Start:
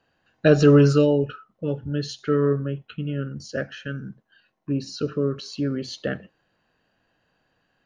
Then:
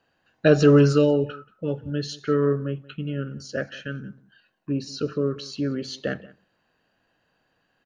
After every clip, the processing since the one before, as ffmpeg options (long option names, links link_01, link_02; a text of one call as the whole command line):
ffmpeg -i in.wav -filter_complex "[0:a]lowshelf=frequency=140:gain=-4,asplit=2[link_01][link_02];[link_02]adelay=180.8,volume=-21dB,highshelf=frequency=4000:gain=-4.07[link_03];[link_01][link_03]amix=inputs=2:normalize=0" out.wav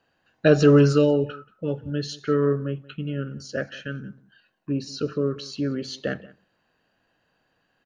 ffmpeg -i in.wav -af anull out.wav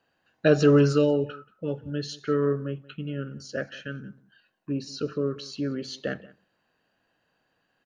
ffmpeg -i in.wav -af "lowshelf=frequency=93:gain=-5,volume=-2.5dB" out.wav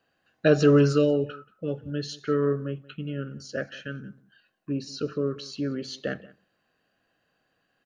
ffmpeg -i in.wav -af "asuperstop=centerf=910:order=4:qfactor=7.1" out.wav